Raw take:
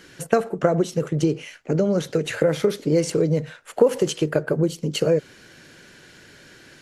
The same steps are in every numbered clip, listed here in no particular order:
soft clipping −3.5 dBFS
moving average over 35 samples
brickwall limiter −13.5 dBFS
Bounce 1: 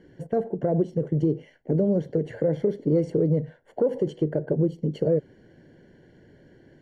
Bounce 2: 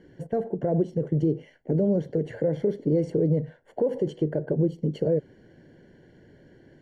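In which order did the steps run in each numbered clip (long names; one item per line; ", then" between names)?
moving average, then soft clipping, then brickwall limiter
soft clipping, then brickwall limiter, then moving average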